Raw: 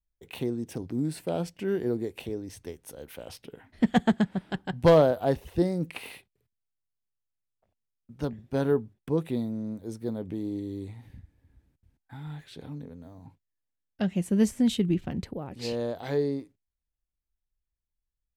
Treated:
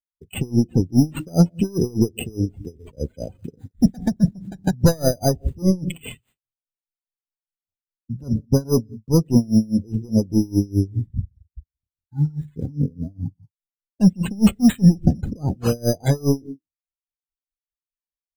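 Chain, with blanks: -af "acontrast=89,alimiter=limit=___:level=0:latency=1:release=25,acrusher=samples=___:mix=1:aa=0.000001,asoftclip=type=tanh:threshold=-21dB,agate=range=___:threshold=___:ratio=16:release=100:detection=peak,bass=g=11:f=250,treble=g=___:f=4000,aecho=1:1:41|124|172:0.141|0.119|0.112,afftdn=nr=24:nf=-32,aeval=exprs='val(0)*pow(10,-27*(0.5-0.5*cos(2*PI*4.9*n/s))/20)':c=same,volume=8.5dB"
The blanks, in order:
-15.5dB, 8, -18dB, -50dB, 9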